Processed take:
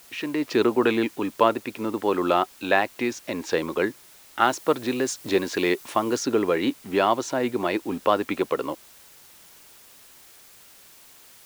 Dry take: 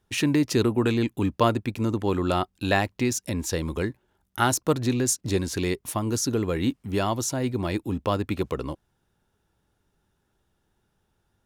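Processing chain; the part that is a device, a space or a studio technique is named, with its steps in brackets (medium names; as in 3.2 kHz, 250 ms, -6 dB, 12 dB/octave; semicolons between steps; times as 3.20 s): dictaphone (band-pass 360–3100 Hz; level rider gain up to 11.5 dB; wow and flutter; white noise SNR 25 dB); 4.41–6.23 s: treble shelf 6 kHz +5 dB; trim -3.5 dB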